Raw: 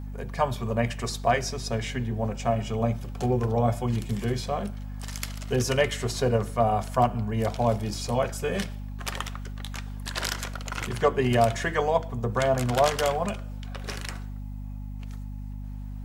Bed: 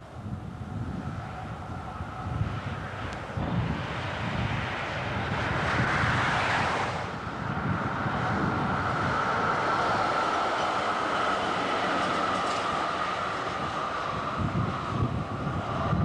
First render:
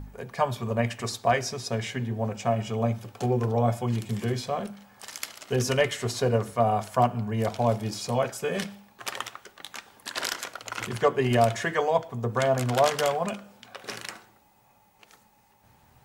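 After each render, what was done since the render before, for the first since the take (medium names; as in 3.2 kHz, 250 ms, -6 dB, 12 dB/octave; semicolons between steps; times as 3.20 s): de-hum 50 Hz, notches 5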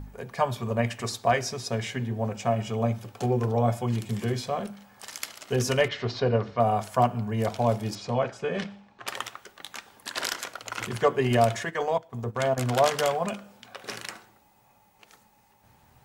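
5.88–6.60 s: steep low-pass 5 kHz; 7.95–9.08 s: distance through air 140 m; 11.59–12.58 s: transient shaper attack -7 dB, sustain -12 dB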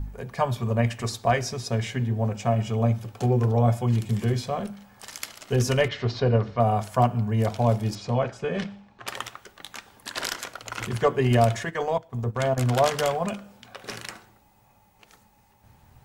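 bass shelf 130 Hz +10.5 dB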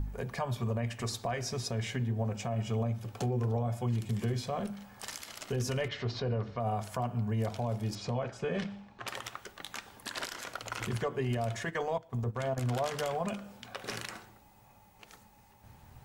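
compression 2:1, threshold -33 dBFS, peak gain reduction 10.5 dB; peak limiter -23.5 dBFS, peak gain reduction 11 dB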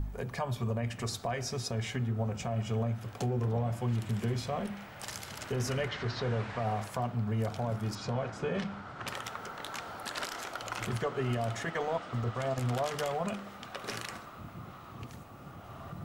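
add bed -17.5 dB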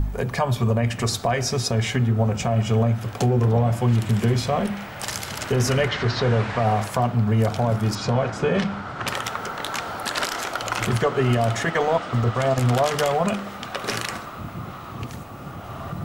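trim +12 dB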